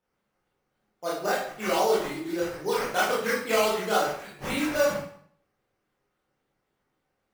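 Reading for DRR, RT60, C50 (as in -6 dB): -7.5 dB, 0.60 s, 2.5 dB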